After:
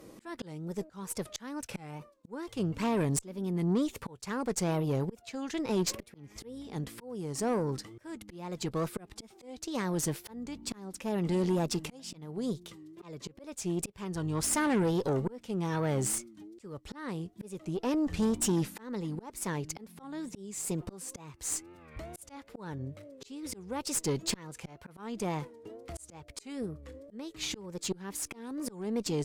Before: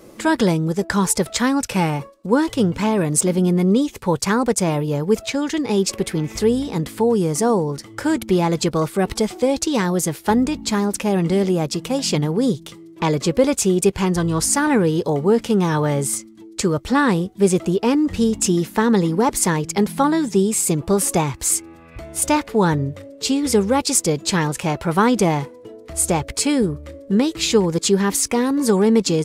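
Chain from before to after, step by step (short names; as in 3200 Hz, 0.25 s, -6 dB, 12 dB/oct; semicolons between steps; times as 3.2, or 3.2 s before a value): wow and flutter 120 cents; auto swell 0.775 s; tube stage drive 17 dB, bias 0.45; gain -6 dB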